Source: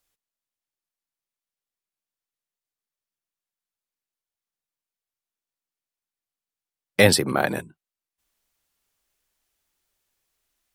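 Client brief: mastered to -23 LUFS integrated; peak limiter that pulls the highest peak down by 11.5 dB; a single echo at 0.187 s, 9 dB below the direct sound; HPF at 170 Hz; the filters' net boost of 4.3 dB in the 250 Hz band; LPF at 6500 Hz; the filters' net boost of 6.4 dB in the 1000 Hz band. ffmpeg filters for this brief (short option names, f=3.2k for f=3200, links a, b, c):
-af "highpass=170,lowpass=6.5k,equalizer=f=250:t=o:g=6.5,equalizer=f=1k:t=o:g=9,alimiter=limit=-10.5dB:level=0:latency=1,aecho=1:1:187:0.355,volume=0.5dB"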